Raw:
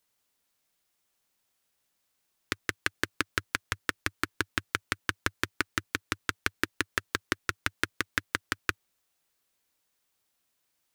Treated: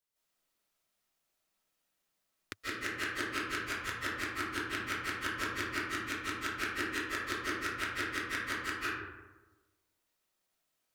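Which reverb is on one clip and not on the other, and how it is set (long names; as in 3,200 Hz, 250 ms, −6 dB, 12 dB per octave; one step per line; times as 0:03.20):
comb and all-pass reverb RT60 1.2 s, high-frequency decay 0.45×, pre-delay 115 ms, DRR −10 dB
level −12.5 dB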